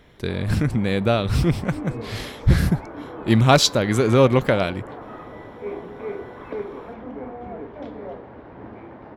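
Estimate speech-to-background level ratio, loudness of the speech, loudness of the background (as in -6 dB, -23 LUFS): 16.5 dB, -20.0 LUFS, -36.5 LUFS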